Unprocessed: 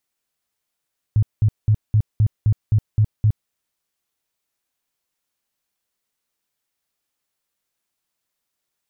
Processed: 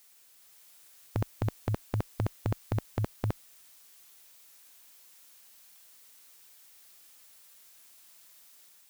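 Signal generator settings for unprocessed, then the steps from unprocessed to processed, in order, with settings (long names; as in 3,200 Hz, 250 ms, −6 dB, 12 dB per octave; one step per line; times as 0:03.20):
tone bursts 107 Hz, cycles 7, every 0.26 s, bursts 9, −11.5 dBFS
spectral tilt +2 dB per octave
automatic gain control gain up to 3 dB
every bin compressed towards the loudest bin 2 to 1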